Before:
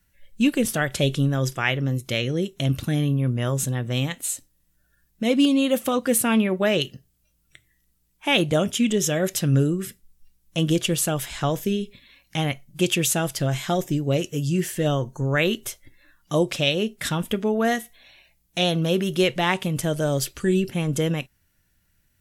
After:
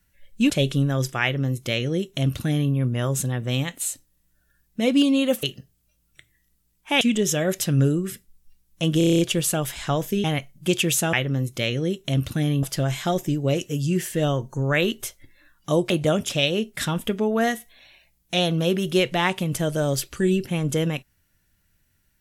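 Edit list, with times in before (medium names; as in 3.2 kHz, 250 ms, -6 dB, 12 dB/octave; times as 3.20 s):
0.50–0.93 s: delete
1.65–3.15 s: copy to 13.26 s
5.86–6.79 s: delete
8.37–8.76 s: move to 16.53 s
10.73 s: stutter 0.03 s, 8 plays
11.78–12.37 s: delete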